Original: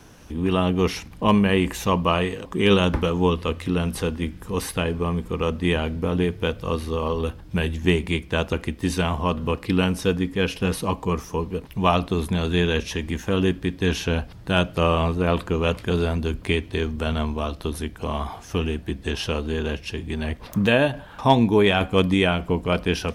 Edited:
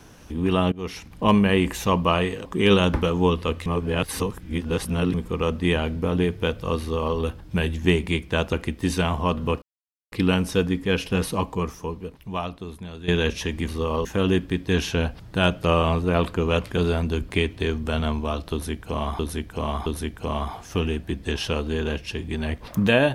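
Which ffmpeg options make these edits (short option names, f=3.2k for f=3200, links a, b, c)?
-filter_complex "[0:a]asplit=10[a][b][c][d][e][f][g][h][i][j];[a]atrim=end=0.72,asetpts=PTS-STARTPTS,afade=t=out:st=0.716:d=0.004:c=hsin:silence=0.1[k];[b]atrim=start=0.72:end=3.662,asetpts=PTS-STARTPTS,afade=t=in:d=0.52:silence=0.1[l];[c]atrim=start=3.658:end=5.142,asetpts=PTS-STARTPTS,areverse[m];[d]atrim=start=5.138:end=9.62,asetpts=PTS-STARTPTS,afade=t=out:st=4.478:d=0.004:c=hsin,apad=pad_dur=0.5[n];[e]atrim=start=9.62:end=12.58,asetpts=PTS-STARTPTS,afade=t=in:d=0.004:c=hsin,afade=t=out:st=1.23:d=1.73:c=qua:silence=0.199526[o];[f]atrim=start=12.58:end=13.182,asetpts=PTS-STARTPTS,afade=t=in:d=0.004:c=hsin:silence=0.199526[p];[g]atrim=start=6.798:end=7.172[q];[h]atrim=start=13.178:end=18.322[r];[i]atrim=start=17.648:end=18.322[s];[j]atrim=start=17.648[t];[k][l]concat=n=2:v=0:a=1[u];[u][m]acrossfade=d=0.004:c1=hsin:c2=hsin[v];[n][o][p]concat=n=3:v=0:a=1[w];[v][w]acrossfade=d=0.004:c1=hsin:c2=hsin[x];[x][q]acrossfade=d=0.004:c1=hsin:c2=hsin[y];[y][r]acrossfade=d=0.004:c1=hsin:c2=hsin[z];[z][s]acrossfade=d=0.004:c1=hsin:c2=hsin[aa];[aa][t]acrossfade=d=0.004:c1=hsin:c2=hsin"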